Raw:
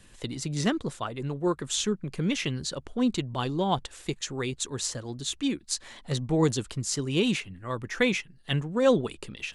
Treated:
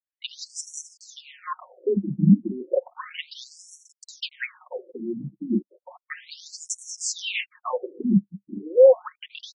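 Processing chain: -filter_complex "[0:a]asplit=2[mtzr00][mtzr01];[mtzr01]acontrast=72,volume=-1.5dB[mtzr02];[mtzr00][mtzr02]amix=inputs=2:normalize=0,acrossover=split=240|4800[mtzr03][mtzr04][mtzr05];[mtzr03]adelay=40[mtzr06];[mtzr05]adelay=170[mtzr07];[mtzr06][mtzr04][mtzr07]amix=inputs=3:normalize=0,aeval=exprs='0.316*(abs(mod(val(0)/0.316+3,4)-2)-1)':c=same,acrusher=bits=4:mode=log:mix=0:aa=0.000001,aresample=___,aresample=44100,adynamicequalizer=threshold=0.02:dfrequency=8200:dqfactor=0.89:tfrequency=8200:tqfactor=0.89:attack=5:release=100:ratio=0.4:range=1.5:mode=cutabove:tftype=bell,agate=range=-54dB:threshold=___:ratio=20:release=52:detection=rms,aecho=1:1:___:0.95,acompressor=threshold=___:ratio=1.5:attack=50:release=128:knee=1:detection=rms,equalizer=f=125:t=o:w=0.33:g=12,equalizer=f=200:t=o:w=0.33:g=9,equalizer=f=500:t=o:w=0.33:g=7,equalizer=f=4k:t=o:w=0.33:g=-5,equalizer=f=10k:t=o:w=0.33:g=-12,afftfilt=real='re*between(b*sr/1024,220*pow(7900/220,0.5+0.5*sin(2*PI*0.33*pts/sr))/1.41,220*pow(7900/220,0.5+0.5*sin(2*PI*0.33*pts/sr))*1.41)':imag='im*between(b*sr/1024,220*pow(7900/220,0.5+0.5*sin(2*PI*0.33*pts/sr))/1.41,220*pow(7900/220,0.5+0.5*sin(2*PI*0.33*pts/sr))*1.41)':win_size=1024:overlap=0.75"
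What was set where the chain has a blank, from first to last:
32000, -33dB, 5.5, -26dB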